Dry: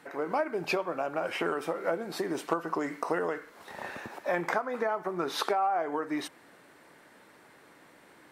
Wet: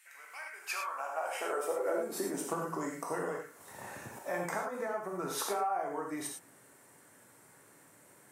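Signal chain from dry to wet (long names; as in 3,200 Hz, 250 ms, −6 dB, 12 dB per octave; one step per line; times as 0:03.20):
high shelf with overshoot 5,700 Hz +11.5 dB, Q 1.5
high-pass filter sweep 2,300 Hz → 100 Hz, 0:00.31–0:02.96
reverb whose tail is shaped and stops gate 130 ms flat, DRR 0 dB
level −8.5 dB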